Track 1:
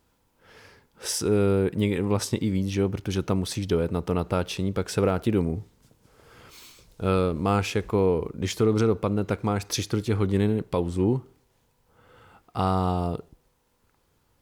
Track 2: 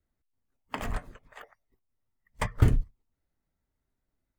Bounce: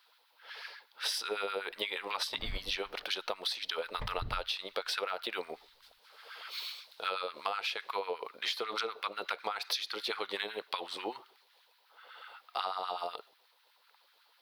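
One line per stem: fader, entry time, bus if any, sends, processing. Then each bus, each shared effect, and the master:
-2.0 dB, 0.00 s, no send, tilt EQ +3.5 dB/octave; LFO high-pass sine 8.1 Hz 530–1600 Hz
-8.0 dB, 1.60 s, no send, compression 3:1, threshold -34 dBFS, peak gain reduction 14.5 dB; tilt EQ -2 dB/octave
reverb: none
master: resonant high shelf 5.4 kHz -10 dB, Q 3; compression 12:1, threshold -31 dBFS, peak gain reduction 14.5 dB

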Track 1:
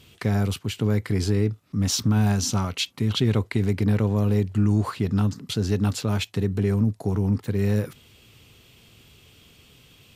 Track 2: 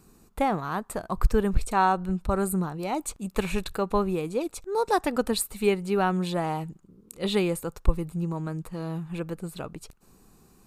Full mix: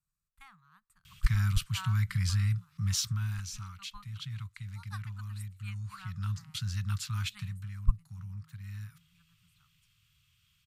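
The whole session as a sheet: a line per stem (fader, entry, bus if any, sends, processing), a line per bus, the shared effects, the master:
2.81 s -2.5 dB -> 3.55 s -15.5 dB -> 5.77 s -15.5 dB -> 6.43 s -6.5 dB -> 7.28 s -6.5 dB -> 7.78 s -16 dB, 1.05 s, no send, none
-3.5 dB, 0.00 s, no send, upward expansion 2.5:1, over -30 dBFS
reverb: none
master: elliptic band-stop 150–1200 Hz, stop band 60 dB

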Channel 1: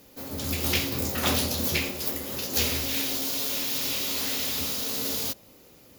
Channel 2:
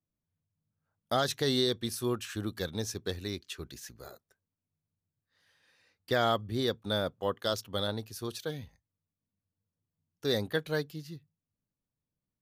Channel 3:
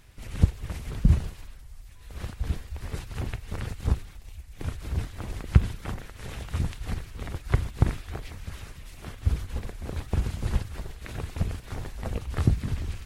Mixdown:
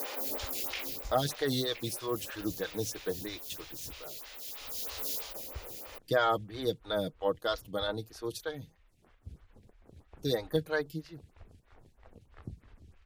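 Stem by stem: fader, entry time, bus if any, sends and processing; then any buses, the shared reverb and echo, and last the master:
-11.0 dB, 0.00 s, no send, high-pass 530 Hz 12 dB/octave; level flattener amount 100%; auto duck -9 dB, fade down 0.30 s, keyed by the second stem
+0.5 dB, 0.00 s, no send, comb 6.4 ms, depth 62%
-19.0 dB, 0.00 s, no send, treble shelf 6 kHz -7 dB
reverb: none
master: lamp-driven phase shifter 3.1 Hz

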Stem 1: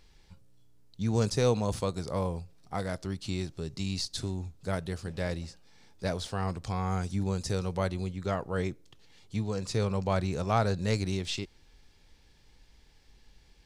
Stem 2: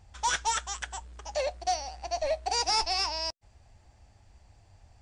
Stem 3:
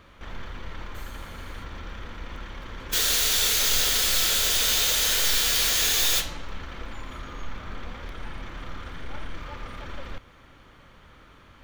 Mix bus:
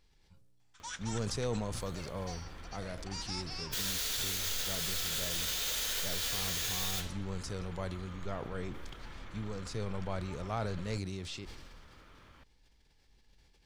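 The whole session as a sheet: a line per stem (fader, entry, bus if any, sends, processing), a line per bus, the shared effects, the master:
-9.5 dB, 0.00 s, no send, decay stretcher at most 31 dB/s
-3.0 dB, 0.60 s, no send, high-pass 1.2 kHz; auto duck -10 dB, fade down 0.80 s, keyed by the first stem
-10.5 dB, 0.80 s, no send, upward compressor, threshold -40 dBFS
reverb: none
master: peak limiter -24.5 dBFS, peak gain reduction 4.5 dB

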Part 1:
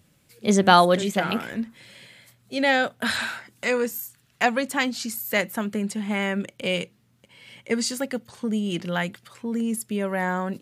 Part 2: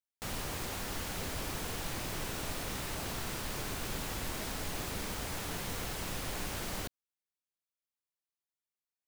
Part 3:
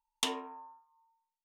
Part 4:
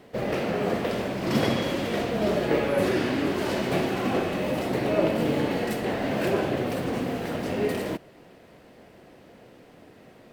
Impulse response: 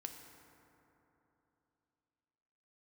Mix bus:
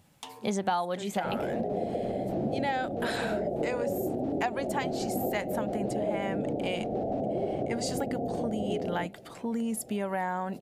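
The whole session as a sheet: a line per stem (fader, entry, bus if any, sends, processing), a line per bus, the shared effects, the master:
-2.0 dB, 0.00 s, no send, none
-10.5 dB, 1.10 s, no send, low-pass 3.5 kHz 12 dB/octave; trance gate "xx.x.x.x.x.x..x" 177 bpm -12 dB
-6.0 dB, 0.00 s, no send, auto duck -9 dB, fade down 0.25 s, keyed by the first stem
+1.0 dB, 1.10 s, no send, steep low-pass 730 Hz 72 dB/octave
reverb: none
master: peaking EQ 820 Hz +11 dB 0.53 oct; compression 5:1, threshold -28 dBFS, peak gain reduction 18.5 dB

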